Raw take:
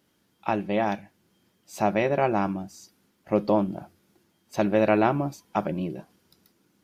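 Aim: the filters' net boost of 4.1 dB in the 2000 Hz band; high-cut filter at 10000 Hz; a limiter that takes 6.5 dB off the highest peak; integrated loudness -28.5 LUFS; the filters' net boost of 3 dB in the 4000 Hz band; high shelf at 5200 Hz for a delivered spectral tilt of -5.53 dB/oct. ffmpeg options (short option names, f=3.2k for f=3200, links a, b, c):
-af "lowpass=10k,equalizer=f=2k:t=o:g=5,equalizer=f=4k:t=o:g=4,highshelf=f=5.2k:g=-5,volume=-1dB,alimiter=limit=-14dB:level=0:latency=1"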